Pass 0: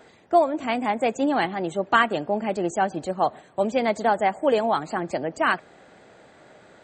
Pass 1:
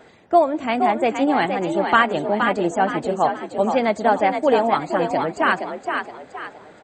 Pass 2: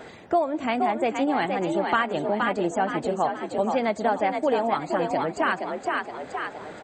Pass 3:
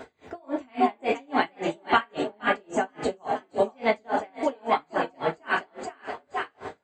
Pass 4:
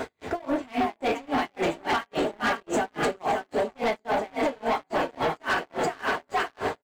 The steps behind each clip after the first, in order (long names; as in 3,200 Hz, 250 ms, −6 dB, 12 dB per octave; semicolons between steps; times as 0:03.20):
bass and treble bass +1 dB, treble −4 dB; echo with shifted repeats 470 ms, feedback 37%, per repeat +45 Hz, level −6 dB; level +3 dB
downward compressor 2 to 1, threshold −36 dBFS, peak gain reduction 14 dB; level +6 dB
dynamic equaliser 2,800 Hz, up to +4 dB, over −41 dBFS, Q 1; convolution reverb, pre-delay 3 ms, DRR −1 dB; tremolo with a sine in dB 3.6 Hz, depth 36 dB
single-tap delay 565 ms −9.5 dB; downward compressor 10 to 1, threshold −29 dBFS, peak gain reduction 15 dB; leveller curve on the samples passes 3